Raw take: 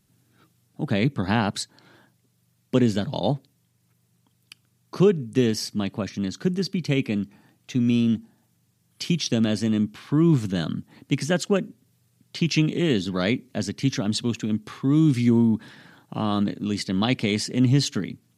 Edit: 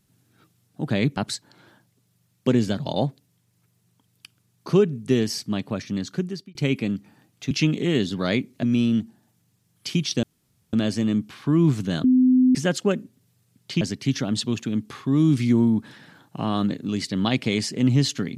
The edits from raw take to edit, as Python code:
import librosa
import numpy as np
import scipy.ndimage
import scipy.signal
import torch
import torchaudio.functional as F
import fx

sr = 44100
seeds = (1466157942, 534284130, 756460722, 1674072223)

y = fx.edit(x, sr, fx.cut(start_s=1.17, length_s=0.27),
    fx.fade_out_span(start_s=6.36, length_s=0.46),
    fx.insert_room_tone(at_s=9.38, length_s=0.5),
    fx.bleep(start_s=10.69, length_s=0.51, hz=255.0, db=-13.0),
    fx.move(start_s=12.46, length_s=1.12, to_s=7.78), tone=tone)